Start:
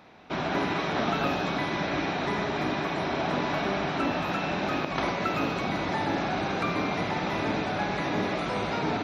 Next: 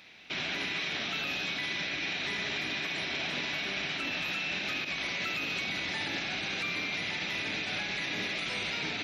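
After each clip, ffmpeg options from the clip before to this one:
ffmpeg -i in.wav -af "highshelf=frequency=1600:width_type=q:width=1.5:gain=14,alimiter=limit=-16.5dB:level=0:latency=1:release=45,volume=-8.5dB" out.wav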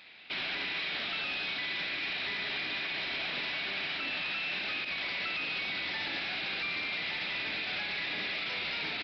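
ffmpeg -i in.wav -af "lowshelf=frequency=400:gain=-8.5,aresample=11025,volume=32dB,asoftclip=hard,volume=-32dB,aresample=44100,volume=1dB" out.wav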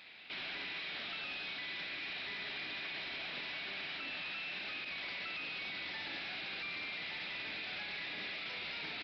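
ffmpeg -i in.wav -af "alimiter=level_in=10dB:limit=-24dB:level=0:latency=1,volume=-10dB,volume=-1.5dB" out.wav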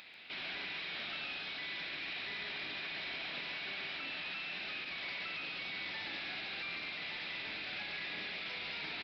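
ffmpeg -i in.wav -filter_complex "[0:a]acompressor=mode=upward:threshold=-53dB:ratio=2.5,asplit=2[link_01][link_02];[link_02]adelay=139.9,volume=-7dB,highshelf=frequency=4000:gain=-3.15[link_03];[link_01][link_03]amix=inputs=2:normalize=0" out.wav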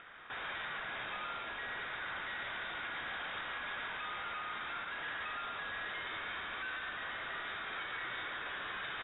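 ffmpeg -i in.wav -af "lowpass=frequency=3300:width_type=q:width=0.5098,lowpass=frequency=3300:width_type=q:width=0.6013,lowpass=frequency=3300:width_type=q:width=0.9,lowpass=frequency=3300:width_type=q:width=2.563,afreqshift=-3900,volume=1.5dB" out.wav

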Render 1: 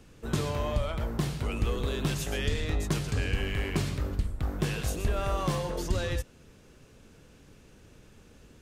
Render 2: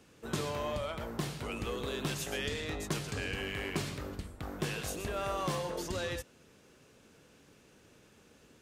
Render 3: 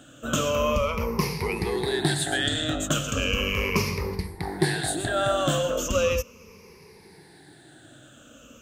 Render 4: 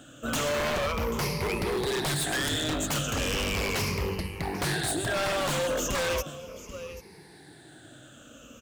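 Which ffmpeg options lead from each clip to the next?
ffmpeg -i in.wav -af "highpass=frequency=250:poles=1,volume=-2dB" out.wav
ffmpeg -i in.wav -af "afftfilt=real='re*pow(10,18/40*sin(2*PI*(0.84*log(max(b,1)*sr/1024/100)/log(2)-(-0.37)*(pts-256)/sr)))':imag='im*pow(10,18/40*sin(2*PI*(0.84*log(max(b,1)*sr/1024/100)/log(2)-(-0.37)*(pts-256)/sr)))':win_size=1024:overlap=0.75,volume=7.5dB" out.wav
ffmpeg -i in.wav -af "aecho=1:1:787:0.141,aeval=exprs='0.0708*(abs(mod(val(0)/0.0708+3,4)-2)-1)':channel_layout=same,acrusher=bits=8:mode=log:mix=0:aa=0.000001" out.wav

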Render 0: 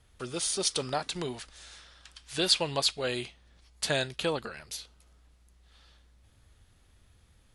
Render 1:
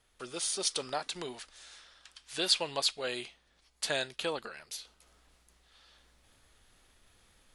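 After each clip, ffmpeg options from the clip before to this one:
ffmpeg -i in.wav -af "equalizer=frequency=80:width=0.49:gain=-14.5,areverse,acompressor=mode=upward:threshold=-53dB:ratio=2.5,areverse,volume=-2.5dB" out.wav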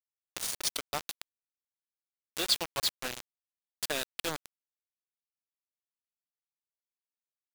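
ffmpeg -i in.wav -af "aeval=exprs='0.266*(cos(1*acos(clip(val(0)/0.266,-1,1)))-cos(1*PI/2))+0.0133*(cos(3*acos(clip(val(0)/0.266,-1,1)))-cos(3*PI/2))':channel_layout=same,acrusher=bits=4:mix=0:aa=0.000001,acompressor=mode=upward:threshold=-32dB:ratio=2.5" out.wav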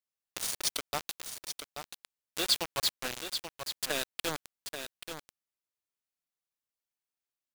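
ffmpeg -i in.wav -filter_complex "[0:a]asplit=2[link_01][link_02];[link_02]aeval=exprs='(mod(6.31*val(0)+1,2)-1)/6.31':channel_layout=same,volume=-9.5dB[link_03];[link_01][link_03]amix=inputs=2:normalize=0,aecho=1:1:833:0.398,volume=-2dB" out.wav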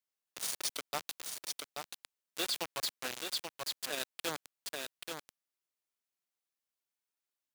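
ffmpeg -i in.wav -af "alimiter=level_in=1.5dB:limit=-24dB:level=0:latency=1:release=20,volume=-1.5dB,highpass=frequency=200:poles=1" out.wav

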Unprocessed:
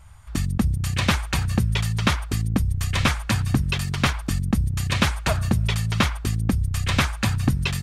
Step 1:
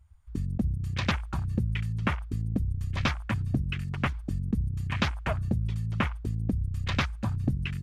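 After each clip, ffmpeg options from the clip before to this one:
ffmpeg -i in.wav -af "afwtdn=0.0398,volume=-6.5dB" out.wav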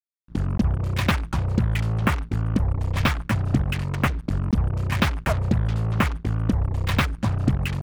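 ffmpeg -i in.wav -af "highshelf=frequency=5700:gain=-11,acrusher=bits=5:mix=0:aa=0.5,volume=6.5dB" out.wav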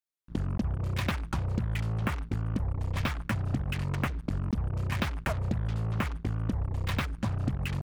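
ffmpeg -i in.wav -af "acompressor=threshold=-29dB:ratio=3" out.wav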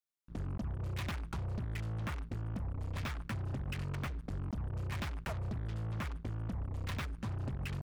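ffmpeg -i in.wav -af "asoftclip=type=tanh:threshold=-29dB,volume=-4dB" out.wav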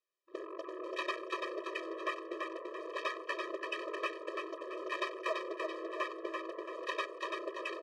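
ffmpeg -i in.wav -af "adynamicsmooth=sensitivity=2:basefreq=4000,aecho=1:1:337|674|1011|1348|1685:0.631|0.259|0.106|0.0435|0.0178,afftfilt=real='re*eq(mod(floor(b*sr/1024/330),2),1)':imag='im*eq(mod(floor(b*sr/1024/330),2),1)':win_size=1024:overlap=0.75,volume=10.5dB" out.wav

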